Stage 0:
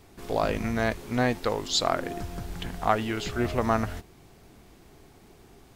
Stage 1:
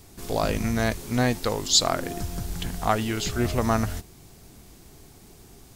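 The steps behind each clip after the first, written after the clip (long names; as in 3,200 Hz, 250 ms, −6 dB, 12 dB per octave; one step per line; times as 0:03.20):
bass and treble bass +5 dB, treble +11 dB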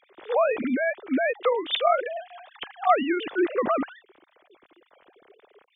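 three sine waves on the formant tracks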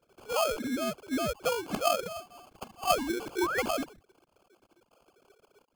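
sample-rate reduction 1,900 Hz, jitter 0%
sound drawn into the spectrogram rise, 0:03.41–0:03.62, 850–2,300 Hz −26 dBFS
level −6.5 dB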